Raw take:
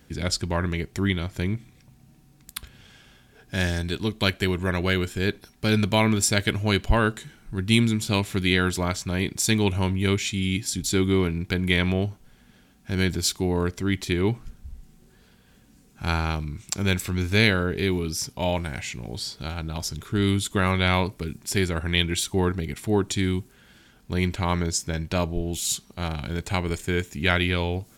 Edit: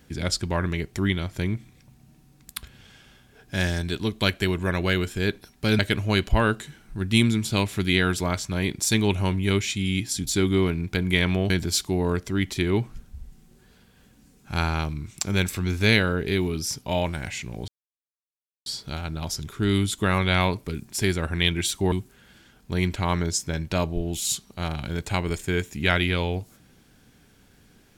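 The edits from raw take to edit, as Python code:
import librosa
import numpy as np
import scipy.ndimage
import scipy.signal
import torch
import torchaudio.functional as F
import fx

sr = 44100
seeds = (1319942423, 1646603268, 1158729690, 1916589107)

y = fx.edit(x, sr, fx.cut(start_s=5.79, length_s=0.57),
    fx.cut(start_s=12.07, length_s=0.94),
    fx.insert_silence(at_s=19.19, length_s=0.98),
    fx.cut(start_s=22.45, length_s=0.87), tone=tone)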